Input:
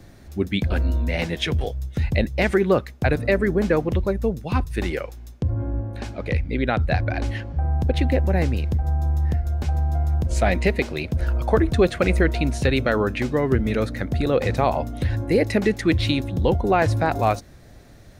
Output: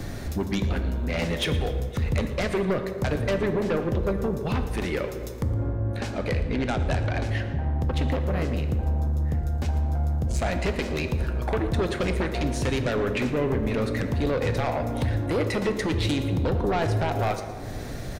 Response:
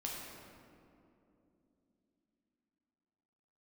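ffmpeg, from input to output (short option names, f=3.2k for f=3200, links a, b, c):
-filter_complex "[0:a]acompressor=threshold=-41dB:ratio=2.5,aeval=exprs='0.0794*(cos(1*acos(clip(val(0)/0.0794,-1,1)))-cos(1*PI/2))+0.0355*(cos(5*acos(clip(val(0)/0.0794,-1,1)))-cos(5*PI/2))':c=same,aecho=1:1:115:0.141,asplit=2[a][b];[1:a]atrim=start_sample=2205,asetrate=70560,aresample=44100[c];[b][c]afir=irnorm=-1:irlink=0,volume=0dB[d];[a][d]amix=inputs=2:normalize=0"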